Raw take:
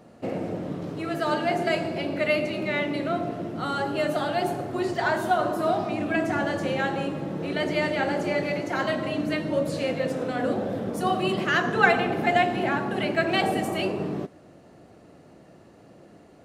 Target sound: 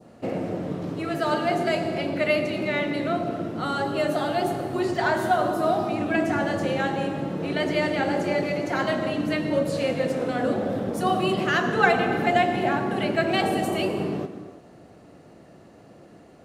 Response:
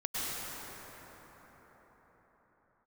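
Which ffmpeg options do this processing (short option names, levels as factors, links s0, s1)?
-filter_complex "[0:a]adynamicequalizer=threshold=0.0158:dfrequency=2000:dqfactor=0.9:tfrequency=2000:tqfactor=0.9:attack=5:release=100:ratio=0.375:range=2:mode=cutabove:tftype=bell,asplit=2[s0][s1];[1:a]atrim=start_sample=2205,afade=t=out:st=0.41:d=0.01,atrim=end_sample=18522[s2];[s1][s2]afir=irnorm=-1:irlink=0,volume=0.237[s3];[s0][s3]amix=inputs=2:normalize=0"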